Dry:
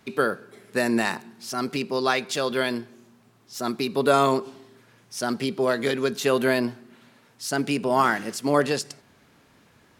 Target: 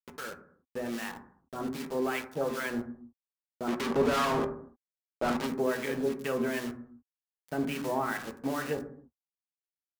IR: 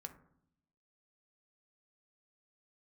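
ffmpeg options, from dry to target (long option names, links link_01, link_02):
-filter_complex "[0:a]afwtdn=0.0316,lowshelf=frequency=420:gain=-3,alimiter=limit=-16dB:level=0:latency=1:release=87,dynaudnorm=framelen=450:gausssize=5:maxgain=7dB,acrusher=bits=4:mix=0:aa=0.000001,asplit=3[link_01][link_02][link_03];[link_01]afade=type=out:start_time=3.67:duration=0.02[link_04];[link_02]asplit=2[link_05][link_06];[link_06]highpass=frequency=720:poles=1,volume=32dB,asoftclip=type=tanh:threshold=-9.5dB[link_07];[link_05][link_07]amix=inputs=2:normalize=0,lowpass=frequency=3400:poles=1,volume=-6dB,afade=type=in:start_time=3.67:duration=0.02,afade=type=out:start_time=5.46:duration=0.02[link_08];[link_03]afade=type=in:start_time=5.46:duration=0.02[link_09];[link_04][link_08][link_09]amix=inputs=3:normalize=0,acrossover=split=930[link_10][link_11];[link_10]aeval=exprs='val(0)*(1-0.7/2+0.7/2*cos(2*PI*2.5*n/s))':channel_layout=same[link_12];[link_11]aeval=exprs='val(0)*(1-0.7/2-0.7/2*cos(2*PI*2.5*n/s))':channel_layout=same[link_13];[link_12][link_13]amix=inputs=2:normalize=0[link_14];[1:a]atrim=start_sample=2205,afade=type=out:start_time=0.36:duration=0.01,atrim=end_sample=16317[link_15];[link_14][link_15]afir=irnorm=-1:irlink=0,volume=-4dB"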